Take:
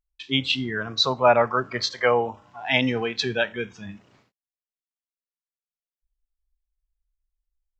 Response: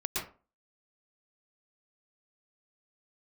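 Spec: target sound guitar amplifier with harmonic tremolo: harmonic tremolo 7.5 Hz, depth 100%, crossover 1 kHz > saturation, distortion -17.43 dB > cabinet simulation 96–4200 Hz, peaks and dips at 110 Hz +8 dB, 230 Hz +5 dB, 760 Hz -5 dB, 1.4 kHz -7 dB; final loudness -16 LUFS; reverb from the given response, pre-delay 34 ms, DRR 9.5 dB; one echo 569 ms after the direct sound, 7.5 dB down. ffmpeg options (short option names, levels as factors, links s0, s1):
-filter_complex "[0:a]aecho=1:1:569:0.422,asplit=2[s0][s1];[1:a]atrim=start_sample=2205,adelay=34[s2];[s1][s2]afir=irnorm=-1:irlink=0,volume=0.178[s3];[s0][s3]amix=inputs=2:normalize=0,acrossover=split=1000[s4][s5];[s4]aeval=exprs='val(0)*(1-1/2+1/2*cos(2*PI*7.5*n/s))':c=same[s6];[s5]aeval=exprs='val(0)*(1-1/2-1/2*cos(2*PI*7.5*n/s))':c=same[s7];[s6][s7]amix=inputs=2:normalize=0,asoftclip=threshold=0.168,highpass=96,equalizer=f=110:t=q:w=4:g=8,equalizer=f=230:t=q:w=4:g=5,equalizer=f=760:t=q:w=4:g=-5,equalizer=f=1400:t=q:w=4:g=-7,lowpass=f=4200:w=0.5412,lowpass=f=4200:w=1.3066,volume=4.73"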